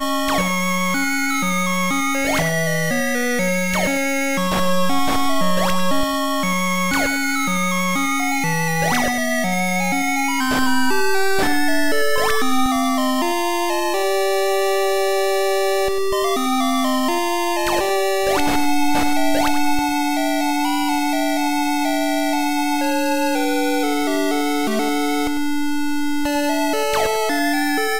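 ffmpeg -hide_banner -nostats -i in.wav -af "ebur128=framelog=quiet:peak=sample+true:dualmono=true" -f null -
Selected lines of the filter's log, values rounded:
Integrated loudness:
  I:         -16.2 LUFS
  Threshold: -26.2 LUFS
Loudness range:
  LRA:         0.9 LU
  Threshold: -36.2 LUFS
  LRA low:   -16.7 LUFS
  LRA high:  -15.8 LUFS
Sample peak:
  Peak:       -7.9 dBFS
True peak:
  Peak:       -7.8 dBFS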